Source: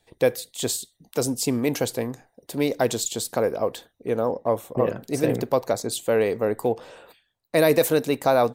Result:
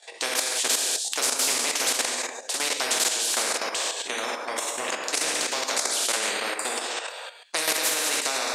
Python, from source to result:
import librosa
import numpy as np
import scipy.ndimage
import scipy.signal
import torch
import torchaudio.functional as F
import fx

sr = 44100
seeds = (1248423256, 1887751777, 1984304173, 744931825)

y = fx.rev_gated(x, sr, seeds[0], gate_ms=340, shape='falling', drr_db=-3.0)
y = fx.level_steps(y, sr, step_db=11)
y = scipy.signal.sosfilt(scipy.signal.cheby1(3, 1.0, [580.0, 7600.0], 'bandpass', fs=sr, output='sos'), y)
y = fx.high_shelf(y, sr, hz=5500.0, db=10.5)
y = fx.spectral_comp(y, sr, ratio=4.0)